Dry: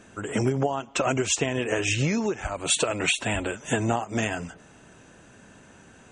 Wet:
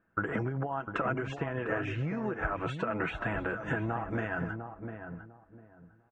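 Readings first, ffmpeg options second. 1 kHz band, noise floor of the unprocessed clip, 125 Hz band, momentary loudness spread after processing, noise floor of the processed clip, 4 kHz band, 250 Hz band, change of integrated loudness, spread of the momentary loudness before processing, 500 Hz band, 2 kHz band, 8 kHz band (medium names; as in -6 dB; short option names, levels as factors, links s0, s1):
-4.0 dB, -52 dBFS, -5.0 dB, 10 LU, -64 dBFS, -21.0 dB, -7.0 dB, -8.0 dB, 6 LU, -7.5 dB, -5.0 dB, under -35 dB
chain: -filter_complex "[0:a]agate=range=0.0501:threshold=0.00891:ratio=16:detection=peak,lowshelf=f=180:g=6.5,aecho=1:1:6.1:0.32,acompressor=threshold=0.0282:ratio=6,lowpass=f=1500:t=q:w=2.8,asplit=2[s0][s1];[s1]adelay=701,lowpass=f=920:p=1,volume=0.473,asplit=2[s2][s3];[s3]adelay=701,lowpass=f=920:p=1,volume=0.25,asplit=2[s4][s5];[s5]adelay=701,lowpass=f=920:p=1,volume=0.25[s6];[s0][s2][s4][s6]amix=inputs=4:normalize=0"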